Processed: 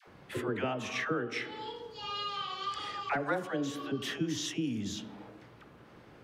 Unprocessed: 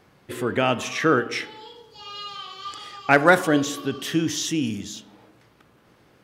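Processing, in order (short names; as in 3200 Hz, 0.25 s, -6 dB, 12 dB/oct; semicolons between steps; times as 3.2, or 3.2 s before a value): high shelf 5100 Hz -12 dB; compressor 4:1, threshold -35 dBFS, peak gain reduction 20 dB; dispersion lows, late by 77 ms, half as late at 630 Hz; gain +2.5 dB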